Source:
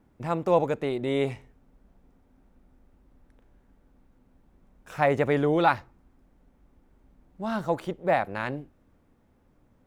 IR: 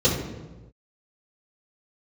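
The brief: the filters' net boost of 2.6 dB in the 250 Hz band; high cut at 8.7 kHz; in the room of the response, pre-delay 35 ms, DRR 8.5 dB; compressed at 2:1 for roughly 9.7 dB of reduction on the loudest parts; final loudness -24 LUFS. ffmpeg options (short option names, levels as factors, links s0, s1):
-filter_complex "[0:a]lowpass=8700,equalizer=f=250:t=o:g=3.5,acompressor=threshold=0.02:ratio=2,asplit=2[s0][s1];[1:a]atrim=start_sample=2205,adelay=35[s2];[s1][s2]afir=irnorm=-1:irlink=0,volume=0.0531[s3];[s0][s3]amix=inputs=2:normalize=0,volume=2.51"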